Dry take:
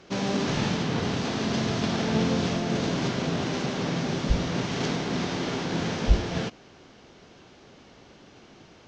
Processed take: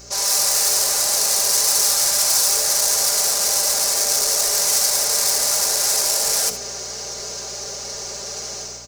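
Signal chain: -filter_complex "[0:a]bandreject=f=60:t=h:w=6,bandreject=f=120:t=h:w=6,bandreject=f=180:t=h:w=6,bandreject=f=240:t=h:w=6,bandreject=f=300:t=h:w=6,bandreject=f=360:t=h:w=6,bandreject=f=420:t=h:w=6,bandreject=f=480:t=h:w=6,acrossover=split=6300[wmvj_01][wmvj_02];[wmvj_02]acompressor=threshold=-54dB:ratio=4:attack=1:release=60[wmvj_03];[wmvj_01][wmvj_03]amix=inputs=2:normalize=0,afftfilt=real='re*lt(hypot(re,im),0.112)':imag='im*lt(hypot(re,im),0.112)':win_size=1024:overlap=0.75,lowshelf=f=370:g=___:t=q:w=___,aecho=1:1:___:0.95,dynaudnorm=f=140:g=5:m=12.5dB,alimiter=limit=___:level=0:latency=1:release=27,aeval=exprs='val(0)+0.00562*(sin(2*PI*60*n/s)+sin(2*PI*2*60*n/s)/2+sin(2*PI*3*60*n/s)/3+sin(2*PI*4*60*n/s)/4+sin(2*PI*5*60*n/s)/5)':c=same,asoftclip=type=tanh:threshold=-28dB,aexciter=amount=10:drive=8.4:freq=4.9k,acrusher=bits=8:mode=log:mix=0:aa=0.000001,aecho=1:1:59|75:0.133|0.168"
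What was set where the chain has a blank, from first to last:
-8.5, 3, 5, -13.5dB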